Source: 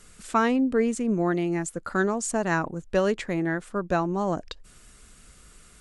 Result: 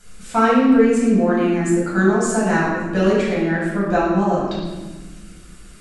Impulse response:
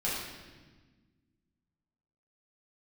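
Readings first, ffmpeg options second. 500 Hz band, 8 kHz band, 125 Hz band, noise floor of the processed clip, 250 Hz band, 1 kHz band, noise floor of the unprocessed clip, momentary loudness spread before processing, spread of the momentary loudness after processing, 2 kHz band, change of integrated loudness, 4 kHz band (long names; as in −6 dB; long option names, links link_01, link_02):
+8.0 dB, +4.0 dB, +8.5 dB, −41 dBFS, +9.5 dB, +7.5 dB, −53 dBFS, 7 LU, 10 LU, +7.5 dB, +8.5 dB, +7.0 dB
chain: -filter_complex "[1:a]atrim=start_sample=2205[link_01];[0:a][link_01]afir=irnorm=-1:irlink=0"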